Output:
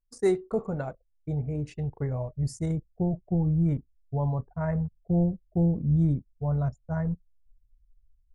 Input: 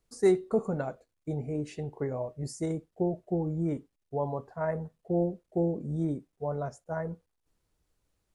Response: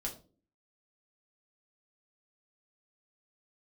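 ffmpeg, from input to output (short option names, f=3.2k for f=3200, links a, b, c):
-af "anlmdn=0.0251,asubboost=boost=11:cutoff=120"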